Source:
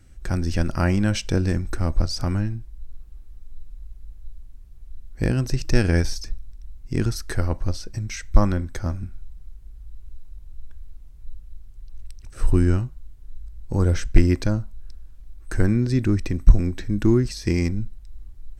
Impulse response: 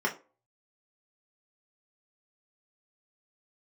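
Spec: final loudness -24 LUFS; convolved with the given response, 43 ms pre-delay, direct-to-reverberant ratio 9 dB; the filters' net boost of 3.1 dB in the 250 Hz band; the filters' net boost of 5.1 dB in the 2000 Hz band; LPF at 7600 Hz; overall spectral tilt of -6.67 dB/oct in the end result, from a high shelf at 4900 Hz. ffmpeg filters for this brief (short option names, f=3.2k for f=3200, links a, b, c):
-filter_complex "[0:a]lowpass=7.6k,equalizer=f=250:t=o:g=4,equalizer=f=2k:t=o:g=7,highshelf=f=4.9k:g=-4,asplit=2[a][b];[1:a]atrim=start_sample=2205,adelay=43[c];[b][c]afir=irnorm=-1:irlink=0,volume=-18.5dB[d];[a][d]amix=inputs=2:normalize=0,volume=-2.5dB"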